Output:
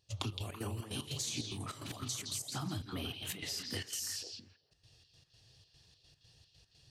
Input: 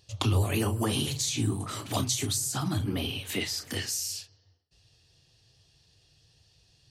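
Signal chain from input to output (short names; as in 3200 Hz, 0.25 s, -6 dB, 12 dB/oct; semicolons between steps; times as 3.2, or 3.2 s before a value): compressor, threshold -35 dBFS, peak gain reduction 13.5 dB; step gate ".xx.x.xx.x.xxx" 149 bpm -12 dB; on a send: delay with a stepping band-pass 0.166 s, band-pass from 3700 Hz, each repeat -1.4 oct, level -2 dB; on the sum: gain -1 dB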